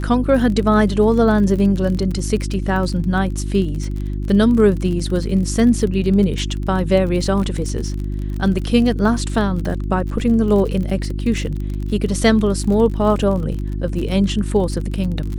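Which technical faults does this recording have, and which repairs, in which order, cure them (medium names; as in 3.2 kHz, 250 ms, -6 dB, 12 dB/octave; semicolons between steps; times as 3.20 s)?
crackle 36 per s -25 dBFS
hum 50 Hz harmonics 7 -23 dBFS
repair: de-click; de-hum 50 Hz, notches 7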